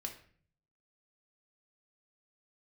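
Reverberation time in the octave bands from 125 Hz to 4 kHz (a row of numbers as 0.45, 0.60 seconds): 0.95, 0.75, 0.55, 0.45, 0.50, 0.40 seconds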